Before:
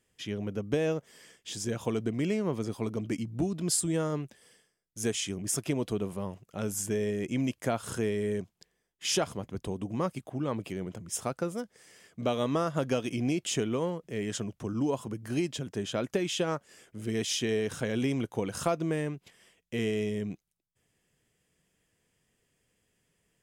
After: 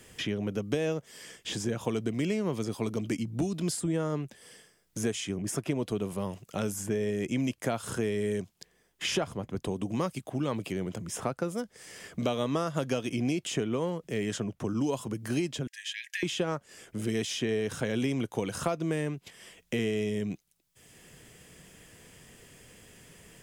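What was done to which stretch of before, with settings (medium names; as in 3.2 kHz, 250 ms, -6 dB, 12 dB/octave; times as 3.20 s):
15.67–16.23 s: brick-wall FIR high-pass 1.6 kHz
whole clip: three bands compressed up and down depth 70%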